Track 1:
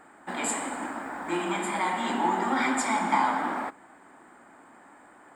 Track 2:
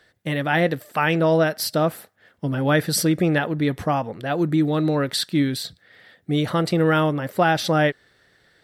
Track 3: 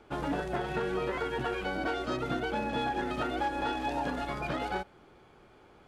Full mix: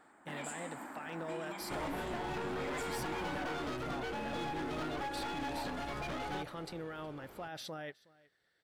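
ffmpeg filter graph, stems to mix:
ffmpeg -i stem1.wav -i stem2.wav -i stem3.wav -filter_complex "[0:a]acompressor=threshold=-34dB:ratio=2.5,volume=-9.5dB[link_01];[1:a]lowshelf=frequency=220:gain=-7.5,alimiter=limit=-17.5dB:level=0:latency=1:release=17,volume=-18dB,asplit=2[link_02][link_03];[link_03]volume=-23dB[link_04];[2:a]acompressor=threshold=-34dB:ratio=6,aeval=exprs='clip(val(0),-1,0.00794)':channel_layout=same,adelay=1600,volume=2dB,asplit=2[link_05][link_06];[link_06]volume=-18dB[link_07];[link_04][link_07]amix=inputs=2:normalize=0,aecho=0:1:368:1[link_08];[link_01][link_02][link_05][link_08]amix=inputs=4:normalize=0,asoftclip=type=hard:threshold=-34dB" out.wav

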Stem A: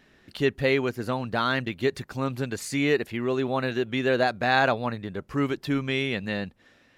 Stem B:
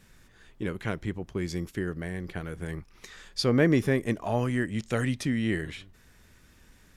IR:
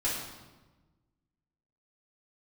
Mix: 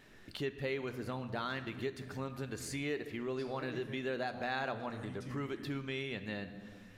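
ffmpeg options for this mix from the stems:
-filter_complex "[0:a]bandreject=frequency=60:width_type=h:width=6,bandreject=frequency=120:width_type=h:width=6,volume=-2.5dB,asplit=3[link_01][link_02][link_03];[link_02]volume=-15.5dB[link_04];[1:a]volume=-12dB,asplit=2[link_05][link_06];[link_06]volume=-11.5dB[link_07];[link_03]apad=whole_len=307286[link_08];[link_05][link_08]sidechaincompress=threshold=-33dB:ratio=8:attack=16:release=487[link_09];[2:a]atrim=start_sample=2205[link_10];[link_04][link_07]amix=inputs=2:normalize=0[link_11];[link_11][link_10]afir=irnorm=-1:irlink=0[link_12];[link_01][link_09][link_12]amix=inputs=3:normalize=0,acompressor=threshold=-45dB:ratio=2"

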